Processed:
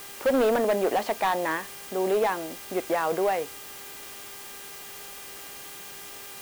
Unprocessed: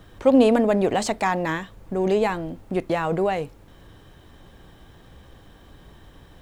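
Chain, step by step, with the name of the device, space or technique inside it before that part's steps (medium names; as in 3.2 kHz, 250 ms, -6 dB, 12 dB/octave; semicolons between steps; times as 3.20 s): aircraft radio (band-pass 390–2500 Hz; hard clipper -18 dBFS, distortion -12 dB; mains buzz 400 Hz, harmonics 8, -50 dBFS -1 dB/octave; white noise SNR 14 dB)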